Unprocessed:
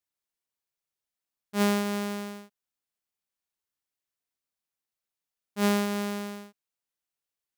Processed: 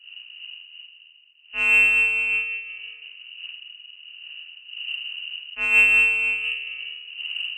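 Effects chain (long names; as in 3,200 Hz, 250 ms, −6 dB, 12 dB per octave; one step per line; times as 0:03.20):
wind on the microphone 160 Hz −43 dBFS
parametric band 680 Hz −7.5 dB 0.93 octaves
spring reverb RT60 2.1 s, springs 39/44/51 ms, chirp 70 ms, DRR −1.5 dB
voice inversion scrambler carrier 2,900 Hz
in parallel at −7 dB: soft clipping −19.5 dBFS, distortion −10 dB
on the sum: amplitude modulation by smooth noise, depth 60%
level +1.5 dB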